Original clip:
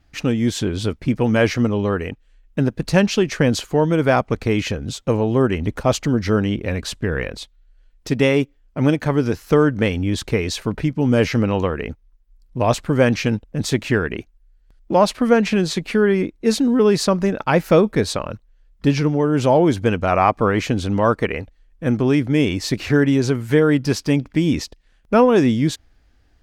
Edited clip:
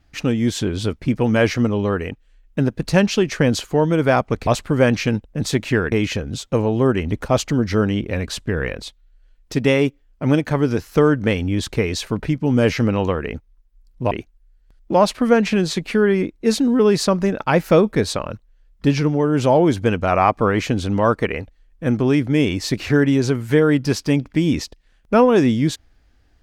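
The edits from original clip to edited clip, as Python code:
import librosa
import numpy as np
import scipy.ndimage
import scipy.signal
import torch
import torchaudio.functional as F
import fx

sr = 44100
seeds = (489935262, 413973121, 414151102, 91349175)

y = fx.edit(x, sr, fx.move(start_s=12.66, length_s=1.45, to_s=4.47), tone=tone)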